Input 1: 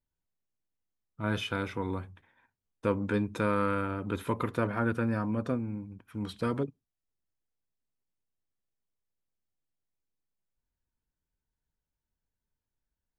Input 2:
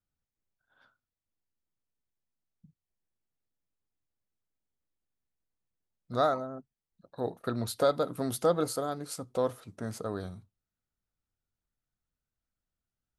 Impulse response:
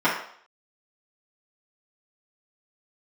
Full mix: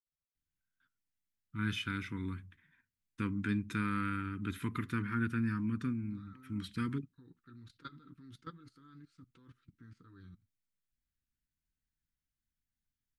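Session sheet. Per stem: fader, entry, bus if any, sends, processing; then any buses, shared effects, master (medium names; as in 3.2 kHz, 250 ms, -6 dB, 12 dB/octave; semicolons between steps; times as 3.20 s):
-2.5 dB, 0.35 s, no send, peaking EQ 2 kHz +3 dB 0.25 oct
-6.5 dB, 0.00 s, no send, low-pass 3.3 kHz 12 dB/octave; level held to a coarse grid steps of 22 dB; comb of notches 210 Hz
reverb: none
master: Chebyshev band-stop 270–1500 Hz, order 2; peaking EQ 620 Hz -7 dB 0.22 oct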